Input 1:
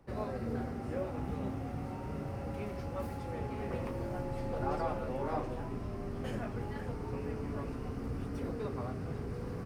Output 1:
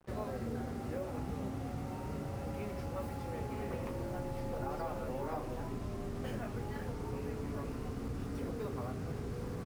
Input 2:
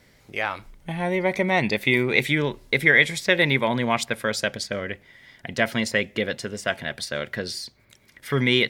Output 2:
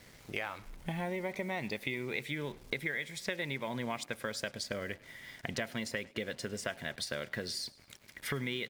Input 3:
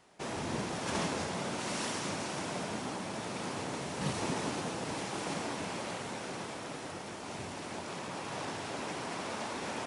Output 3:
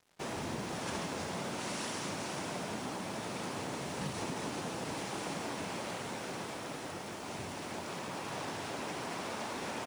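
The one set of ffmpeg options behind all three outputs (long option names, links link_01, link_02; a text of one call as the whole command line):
ffmpeg -i in.wav -filter_complex "[0:a]acompressor=threshold=-34dB:ratio=8,acrusher=bits=8:mix=0:aa=0.5,asplit=4[link_01][link_02][link_03][link_04];[link_02]adelay=103,afreqshift=31,volume=-23dB[link_05];[link_03]adelay=206,afreqshift=62,volume=-29.6dB[link_06];[link_04]adelay=309,afreqshift=93,volume=-36.1dB[link_07];[link_01][link_05][link_06][link_07]amix=inputs=4:normalize=0" out.wav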